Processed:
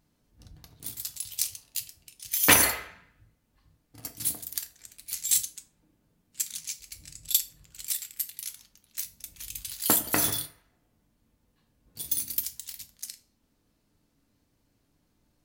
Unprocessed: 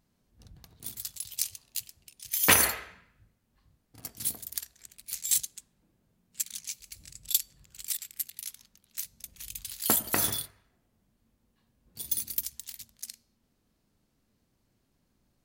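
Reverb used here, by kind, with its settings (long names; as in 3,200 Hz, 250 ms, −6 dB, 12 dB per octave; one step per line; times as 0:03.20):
feedback delay network reverb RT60 0.32 s, low-frequency decay 1×, high-frequency decay 0.9×, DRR 7 dB
level +1.5 dB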